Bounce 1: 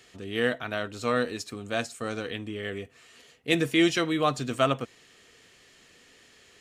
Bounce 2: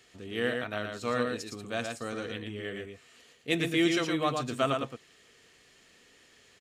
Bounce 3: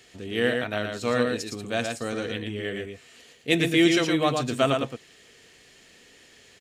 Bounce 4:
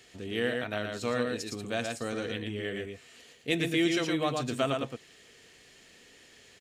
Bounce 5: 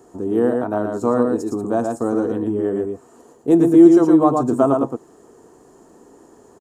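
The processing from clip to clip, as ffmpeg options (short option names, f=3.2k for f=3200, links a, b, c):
-af "aecho=1:1:114:0.596,volume=-4.5dB"
-af "equalizer=f=1.2k:w=2.9:g=-5,volume=6.5dB"
-af "acompressor=threshold=-29dB:ratio=1.5,volume=-2.5dB"
-af "firequalizer=gain_entry='entry(100,0);entry(330,13);entry(520,4);entry(940,12);entry(2100,-23);entry(3500,-23);entry(7000,-4)':delay=0.05:min_phase=1,volume=6.5dB"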